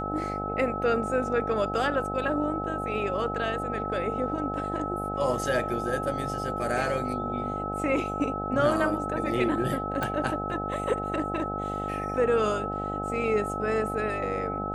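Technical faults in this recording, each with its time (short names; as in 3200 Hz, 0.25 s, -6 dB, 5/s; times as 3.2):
buzz 50 Hz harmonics 17 -34 dBFS
tone 1300 Hz -32 dBFS
10.03 pop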